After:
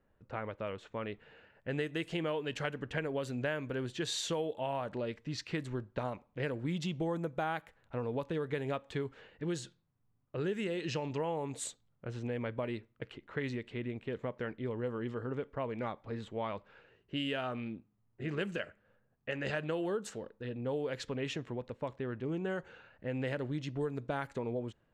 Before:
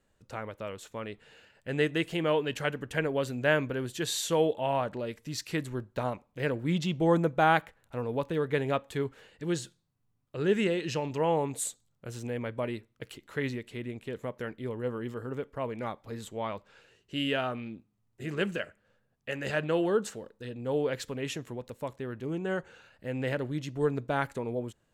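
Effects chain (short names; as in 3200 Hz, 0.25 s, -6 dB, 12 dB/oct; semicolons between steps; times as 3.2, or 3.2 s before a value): low-pass opened by the level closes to 1800 Hz, open at -24 dBFS; compressor 6:1, threshold -32 dBFS, peak gain reduction 13 dB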